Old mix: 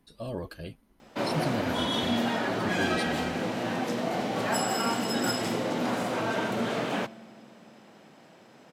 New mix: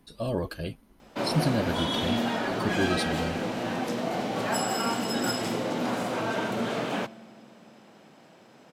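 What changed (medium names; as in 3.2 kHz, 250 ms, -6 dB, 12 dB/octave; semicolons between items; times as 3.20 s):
speech +6.0 dB; master: add peaking EQ 1.9 kHz -2 dB 0.25 oct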